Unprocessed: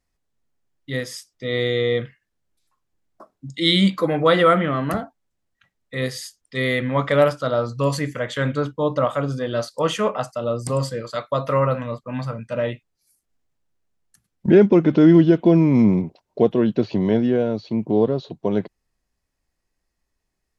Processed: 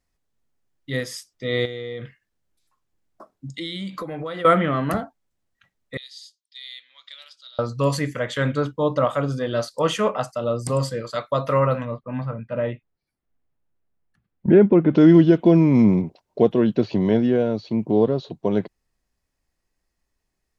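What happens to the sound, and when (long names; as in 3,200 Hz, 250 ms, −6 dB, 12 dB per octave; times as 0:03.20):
0:01.65–0:04.45: downward compressor 12 to 1, threshold −27 dBFS
0:05.97–0:07.59: four-pole ladder band-pass 4,300 Hz, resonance 60%
0:11.85–0:14.95: high-frequency loss of the air 420 metres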